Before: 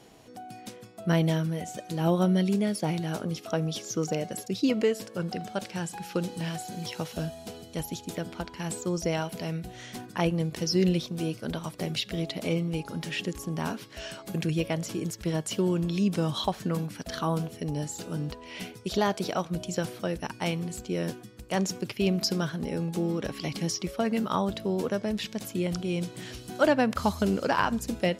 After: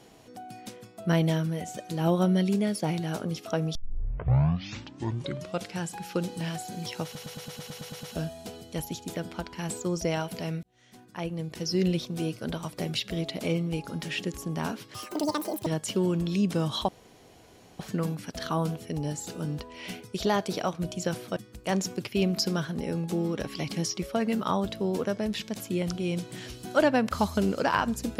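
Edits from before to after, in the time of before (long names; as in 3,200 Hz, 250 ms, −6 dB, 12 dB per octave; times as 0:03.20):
0:03.75: tape start 2.03 s
0:07.04: stutter 0.11 s, 10 plays
0:09.64–0:11.11: fade in
0:13.95–0:15.29: play speed 185%
0:16.51: splice in room tone 0.91 s
0:20.08–0:21.21: remove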